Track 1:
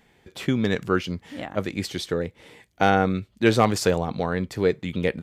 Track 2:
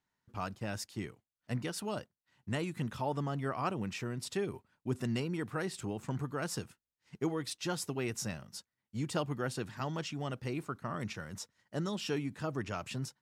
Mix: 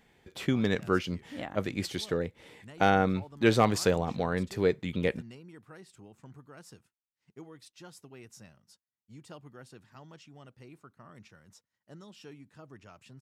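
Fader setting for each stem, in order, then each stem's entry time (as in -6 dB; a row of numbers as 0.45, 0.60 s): -4.5, -14.0 dB; 0.00, 0.15 s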